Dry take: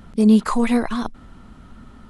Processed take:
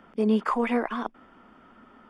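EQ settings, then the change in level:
Butterworth band-reject 4,000 Hz, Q 6.2
three-way crossover with the lows and the highs turned down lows −23 dB, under 260 Hz, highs −19 dB, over 3,400 Hz
−2.0 dB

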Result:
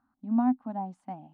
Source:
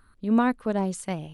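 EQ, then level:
pair of resonant band-passes 450 Hz, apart 1.6 octaves
+1.5 dB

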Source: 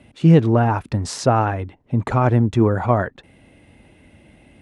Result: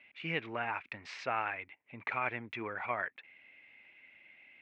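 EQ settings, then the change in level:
resonant band-pass 2,300 Hz, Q 5.2
high-frequency loss of the air 150 metres
+6.0 dB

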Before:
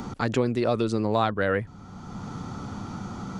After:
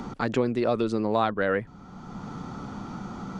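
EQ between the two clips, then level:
parametric band 95 Hz −9.5 dB 0.62 octaves
high-shelf EQ 5,600 Hz −9.5 dB
0.0 dB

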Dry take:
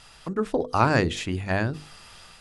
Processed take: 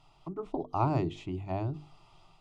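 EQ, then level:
head-to-tape spacing loss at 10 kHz 25 dB
parametric band 4,800 Hz −4 dB 0.77 octaves
phaser with its sweep stopped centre 330 Hz, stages 8
−3.5 dB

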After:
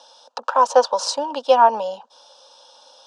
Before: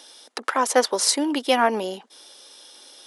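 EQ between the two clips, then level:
loudspeaker in its box 330–6,300 Hz, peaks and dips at 530 Hz +10 dB, 940 Hz +9 dB, 1,500 Hz +3 dB, 2,600 Hz +6 dB
low-shelf EQ 420 Hz +6 dB
phaser with its sweep stopped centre 870 Hz, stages 4
0.0 dB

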